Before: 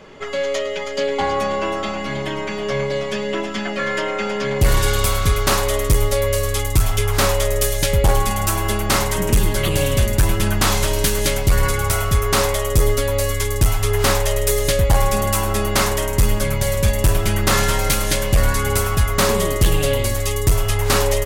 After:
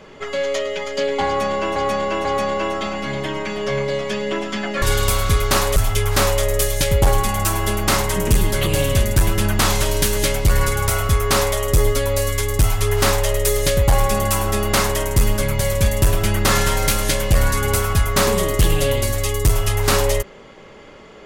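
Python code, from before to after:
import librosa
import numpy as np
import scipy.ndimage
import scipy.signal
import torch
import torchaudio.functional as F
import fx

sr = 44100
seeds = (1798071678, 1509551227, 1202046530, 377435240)

y = fx.edit(x, sr, fx.repeat(start_s=1.27, length_s=0.49, count=3),
    fx.cut(start_s=3.84, length_s=0.94),
    fx.cut(start_s=5.72, length_s=1.06), tone=tone)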